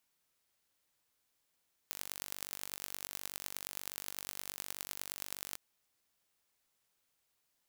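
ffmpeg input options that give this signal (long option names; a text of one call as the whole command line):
ffmpeg -f lavfi -i "aevalsrc='0.282*eq(mod(n,913),0)*(0.5+0.5*eq(mod(n,4565),0))':duration=3.65:sample_rate=44100" out.wav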